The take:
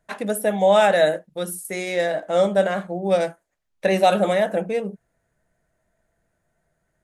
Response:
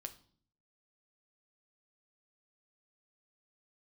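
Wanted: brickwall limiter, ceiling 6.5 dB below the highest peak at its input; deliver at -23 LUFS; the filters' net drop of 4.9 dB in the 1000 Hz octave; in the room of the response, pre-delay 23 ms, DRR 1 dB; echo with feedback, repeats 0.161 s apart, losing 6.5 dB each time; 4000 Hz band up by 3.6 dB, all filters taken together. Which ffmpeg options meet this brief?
-filter_complex "[0:a]equalizer=f=1k:t=o:g=-8,equalizer=f=4k:t=o:g=4.5,alimiter=limit=-13.5dB:level=0:latency=1,aecho=1:1:161|322|483|644|805|966:0.473|0.222|0.105|0.0491|0.0231|0.0109,asplit=2[a][b];[1:a]atrim=start_sample=2205,adelay=23[c];[b][c]afir=irnorm=-1:irlink=0,volume=3dB[d];[a][d]amix=inputs=2:normalize=0,volume=-1.5dB"

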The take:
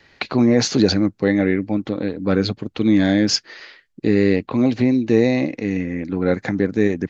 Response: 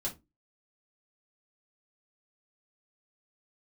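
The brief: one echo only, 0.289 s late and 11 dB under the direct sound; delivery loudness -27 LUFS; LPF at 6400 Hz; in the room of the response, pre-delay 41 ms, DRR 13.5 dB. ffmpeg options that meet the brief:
-filter_complex "[0:a]lowpass=6.4k,aecho=1:1:289:0.282,asplit=2[a][b];[1:a]atrim=start_sample=2205,adelay=41[c];[b][c]afir=irnorm=-1:irlink=0,volume=-15.5dB[d];[a][d]amix=inputs=2:normalize=0,volume=-8.5dB"

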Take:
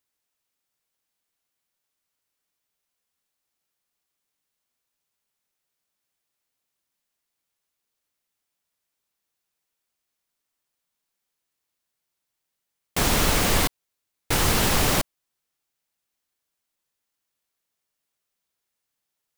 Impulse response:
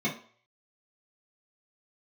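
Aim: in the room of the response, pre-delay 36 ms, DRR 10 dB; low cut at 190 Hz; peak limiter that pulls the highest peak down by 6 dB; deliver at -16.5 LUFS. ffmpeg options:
-filter_complex "[0:a]highpass=190,alimiter=limit=-15.5dB:level=0:latency=1,asplit=2[a][b];[1:a]atrim=start_sample=2205,adelay=36[c];[b][c]afir=irnorm=-1:irlink=0,volume=-19.5dB[d];[a][d]amix=inputs=2:normalize=0,volume=8.5dB"

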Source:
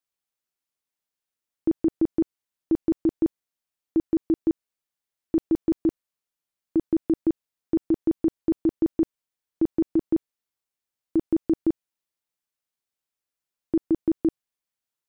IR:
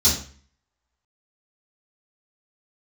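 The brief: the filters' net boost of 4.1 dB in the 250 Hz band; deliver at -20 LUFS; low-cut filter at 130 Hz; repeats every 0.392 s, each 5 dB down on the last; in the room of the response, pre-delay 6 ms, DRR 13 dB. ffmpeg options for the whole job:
-filter_complex "[0:a]highpass=130,equalizer=f=250:t=o:g=6.5,aecho=1:1:392|784|1176|1568|1960|2352|2744:0.562|0.315|0.176|0.0988|0.0553|0.031|0.0173,asplit=2[a][b];[1:a]atrim=start_sample=2205,adelay=6[c];[b][c]afir=irnorm=-1:irlink=0,volume=-27dB[d];[a][d]amix=inputs=2:normalize=0,volume=3.5dB"

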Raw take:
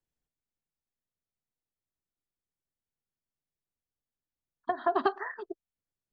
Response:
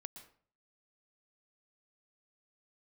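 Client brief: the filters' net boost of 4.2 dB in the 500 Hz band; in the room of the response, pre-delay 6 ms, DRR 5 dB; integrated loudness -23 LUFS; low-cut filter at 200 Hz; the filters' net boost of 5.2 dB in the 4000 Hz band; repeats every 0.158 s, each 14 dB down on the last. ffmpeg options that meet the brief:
-filter_complex "[0:a]highpass=200,equalizer=f=500:t=o:g=7,equalizer=f=4k:t=o:g=6.5,aecho=1:1:158|316:0.2|0.0399,asplit=2[a][b];[1:a]atrim=start_sample=2205,adelay=6[c];[b][c]afir=irnorm=-1:irlink=0,volume=0dB[d];[a][d]amix=inputs=2:normalize=0,volume=4.5dB"

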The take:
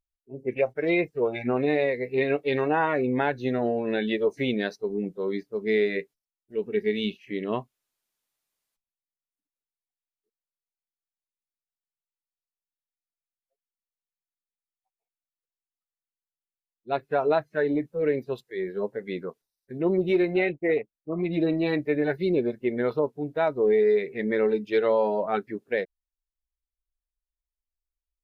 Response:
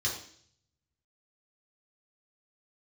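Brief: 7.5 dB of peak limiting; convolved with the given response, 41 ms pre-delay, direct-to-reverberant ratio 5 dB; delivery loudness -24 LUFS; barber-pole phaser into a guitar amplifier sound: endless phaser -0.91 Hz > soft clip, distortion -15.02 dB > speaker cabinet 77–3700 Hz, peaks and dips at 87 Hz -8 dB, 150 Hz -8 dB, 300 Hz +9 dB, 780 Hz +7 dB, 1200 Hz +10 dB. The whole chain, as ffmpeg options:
-filter_complex "[0:a]alimiter=limit=-19dB:level=0:latency=1,asplit=2[a][b];[1:a]atrim=start_sample=2205,adelay=41[c];[b][c]afir=irnorm=-1:irlink=0,volume=-10.5dB[d];[a][d]amix=inputs=2:normalize=0,asplit=2[e][f];[f]afreqshift=-0.91[g];[e][g]amix=inputs=2:normalize=1,asoftclip=threshold=-24.5dB,highpass=77,equalizer=f=87:t=q:w=4:g=-8,equalizer=f=150:t=q:w=4:g=-8,equalizer=f=300:t=q:w=4:g=9,equalizer=f=780:t=q:w=4:g=7,equalizer=f=1.2k:t=q:w=4:g=10,lowpass=f=3.7k:w=0.5412,lowpass=f=3.7k:w=1.3066,volume=6dB"

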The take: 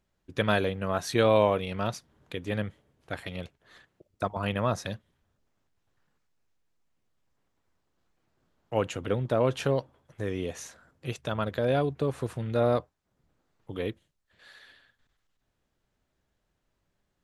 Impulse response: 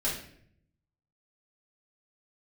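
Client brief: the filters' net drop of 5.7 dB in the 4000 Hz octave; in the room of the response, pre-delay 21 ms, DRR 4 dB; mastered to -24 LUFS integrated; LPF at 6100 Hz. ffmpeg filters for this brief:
-filter_complex "[0:a]lowpass=6.1k,equalizer=f=4k:t=o:g=-7,asplit=2[a][b];[1:a]atrim=start_sample=2205,adelay=21[c];[b][c]afir=irnorm=-1:irlink=0,volume=-10.5dB[d];[a][d]amix=inputs=2:normalize=0,volume=3.5dB"

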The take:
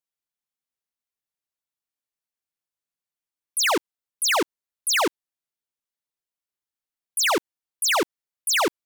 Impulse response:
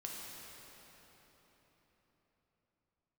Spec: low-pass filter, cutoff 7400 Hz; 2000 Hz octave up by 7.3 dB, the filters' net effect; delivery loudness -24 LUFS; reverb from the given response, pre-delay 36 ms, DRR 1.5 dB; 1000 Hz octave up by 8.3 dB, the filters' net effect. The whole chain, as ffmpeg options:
-filter_complex "[0:a]lowpass=7.4k,equalizer=f=1k:t=o:g=8.5,equalizer=f=2k:t=o:g=6.5,asplit=2[a][b];[1:a]atrim=start_sample=2205,adelay=36[c];[b][c]afir=irnorm=-1:irlink=0,volume=-0.5dB[d];[a][d]amix=inputs=2:normalize=0,volume=-6.5dB"

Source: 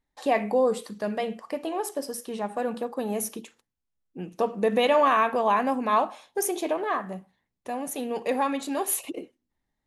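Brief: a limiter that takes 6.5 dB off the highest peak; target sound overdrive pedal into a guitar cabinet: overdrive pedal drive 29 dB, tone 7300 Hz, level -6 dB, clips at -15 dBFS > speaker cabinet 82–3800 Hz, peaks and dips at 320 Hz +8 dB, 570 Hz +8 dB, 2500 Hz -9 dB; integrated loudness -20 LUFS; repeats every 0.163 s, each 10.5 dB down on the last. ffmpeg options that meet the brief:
-filter_complex "[0:a]alimiter=limit=-17.5dB:level=0:latency=1,aecho=1:1:163|326|489:0.299|0.0896|0.0269,asplit=2[a][b];[b]highpass=f=720:p=1,volume=29dB,asoftclip=type=tanh:threshold=-15dB[c];[a][c]amix=inputs=2:normalize=0,lowpass=f=7.3k:p=1,volume=-6dB,highpass=82,equalizer=f=320:t=q:w=4:g=8,equalizer=f=570:t=q:w=4:g=8,equalizer=f=2.5k:t=q:w=4:g=-9,lowpass=f=3.8k:w=0.5412,lowpass=f=3.8k:w=1.3066"

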